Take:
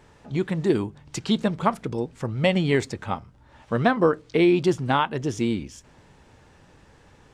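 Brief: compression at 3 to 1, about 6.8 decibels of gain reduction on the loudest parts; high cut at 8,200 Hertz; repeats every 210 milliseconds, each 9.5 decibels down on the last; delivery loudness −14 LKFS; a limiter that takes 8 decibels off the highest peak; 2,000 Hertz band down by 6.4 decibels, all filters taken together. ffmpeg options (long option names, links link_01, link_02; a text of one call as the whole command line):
ffmpeg -i in.wav -af "lowpass=8200,equalizer=frequency=2000:width_type=o:gain=-8.5,acompressor=threshold=-24dB:ratio=3,alimiter=limit=-21.5dB:level=0:latency=1,aecho=1:1:210|420|630|840:0.335|0.111|0.0365|0.012,volume=17.5dB" out.wav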